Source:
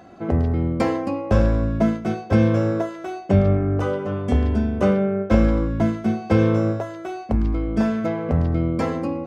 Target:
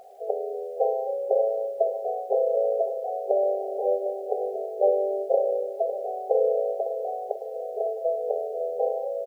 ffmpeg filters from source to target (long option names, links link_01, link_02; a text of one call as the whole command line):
ffmpeg -i in.wav -filter_complex "[0:a]afftfilt=real='re*between(b*sr/4096,390,810)':imag='im*between(b*sr/4096,390,810)':win_size=4096:overlap=0.75,acrusher=bits=10:mix=0:aa=0.000001,asplit=2[link_01][link_02];[link_02]aecho=0:1:554|1108|1662|2216|2770|3324|3878:0.299|0.173|0.1|0.0582|0.0338|0.0196|0.0114[link_03];[link_01][link_03]amix=inputs=2:normalize=0,volume=1.5dB" out.wav